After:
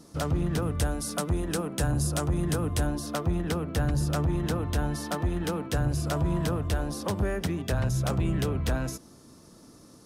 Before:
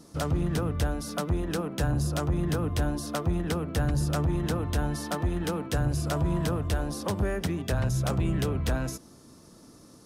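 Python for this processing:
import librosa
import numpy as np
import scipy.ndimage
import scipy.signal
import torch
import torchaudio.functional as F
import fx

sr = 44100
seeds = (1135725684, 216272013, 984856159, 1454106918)

y = fx.peak_eq(x, sr, hz=9100.0, db=8.5, octaves=0.96, at=(0.62, 2.87))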